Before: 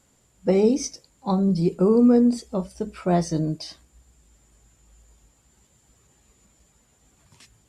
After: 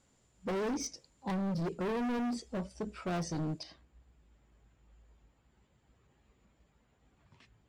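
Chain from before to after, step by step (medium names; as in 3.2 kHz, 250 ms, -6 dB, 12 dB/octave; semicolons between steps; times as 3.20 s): low-pass 7.1 kHz 12 dB/octave, from 3.63 s 2.9 kHz; hard clipper -25.5 dBFS, distortion -5 dB; trim -6.5 dB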